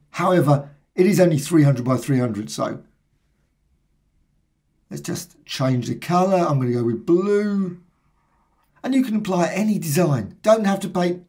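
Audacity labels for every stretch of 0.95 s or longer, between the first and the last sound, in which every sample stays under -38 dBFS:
2.800000	4.910000	silence
7.760000	8.840000	silence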